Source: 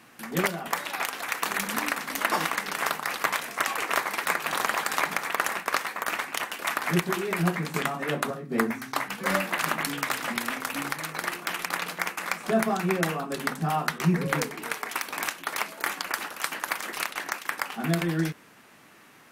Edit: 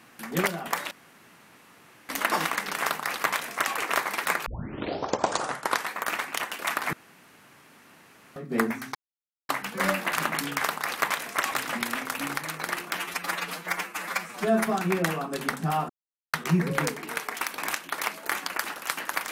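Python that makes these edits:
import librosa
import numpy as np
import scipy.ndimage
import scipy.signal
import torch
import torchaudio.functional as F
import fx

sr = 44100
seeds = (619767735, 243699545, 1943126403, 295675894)

y = fx.edit(x, sr, fx.room_tone_fill(start_s=0.91, length_s=1.18),
    fx.duplicate(start_s=2.83, length_s=0.91, to_s=10.07),
    fx.tape_start(start_s=4.46, length_s=1.46),
    fx.room_tone_fill(start_s=6.93, length_s=1.43),
    fx.insert_silence(at_s=8.95, length_s=0.54),
    fx.stretch_span(start_s=11.52, length_s=1.13, factor=1.5),
    fx.insert_silence(at_s=13.88, length_s=0.44), tone=tone)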